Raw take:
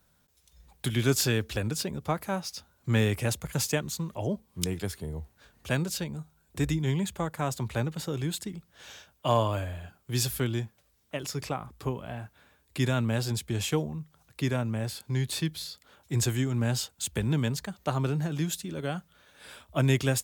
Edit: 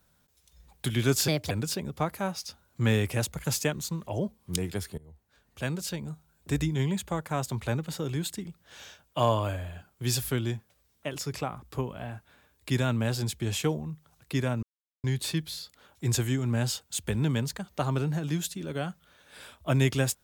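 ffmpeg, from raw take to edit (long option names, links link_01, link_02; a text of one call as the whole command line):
ffmpeg -i in.wav -filter_complex "[0:a]asplit=6[link_01][link_02][link_03][link_04][link_05][link_06];[link_01]atrim=end=1.284[link_07];[link_02]atrim=start=1.28:end=1.59,asetpts=PTS-STARTPTS,asetrate=59976,aresample=44100,atrim=end_sample=10052,asetpts=PTS-STARTPTS[link_08];[link_03]atrim=start=1.586:end=5.06,asetpts=PTS-STARTPTS,afade=type=out:start_time=3.47:duration=0.004:curve=hsin:silence=0.0891251[link_09];[link_04]atrim=start=5.06:end=14.71,asetpts=PTS-STARTPTS,afade=type=in:duration=1.1:silence=0.0891251,afade=type=out:start_time=9.646:duration=0.004:curve=hsin[link_10];[link_05]atrim=start=14.71:end=15.12,asetpts=PTS-STARTPTS,volume=0[link_11];[link_06]atrim=start=15.12,asetpts=PTS-STARTPTS,afade=type=in:duration=0.004:curve=hsin[link_12];[link_07][link_08]acrossfade=duration=0.004:curve1=hsin:curve2=hsin[link_13];[link_09][link_10][link_11][link_12]concat=n=4:v=0:a=1[link_14];[link_13][link_14]acrossfade=duration=0.004:curve1=hsin:curve2=hsin" out.wav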